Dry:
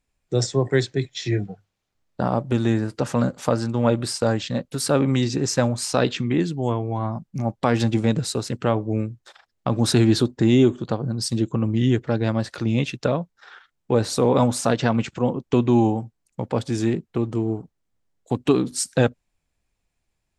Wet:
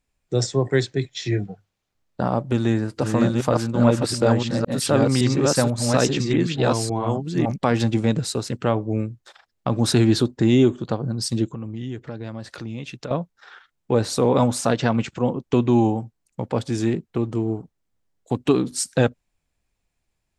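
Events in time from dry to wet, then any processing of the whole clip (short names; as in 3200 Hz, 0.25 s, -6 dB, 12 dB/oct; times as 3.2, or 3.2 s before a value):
2.4–7.73 reverse delay 0.562 s, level -1.5 dB
11.45–13.11 compressor 2.5:1, threshold -33 dBFS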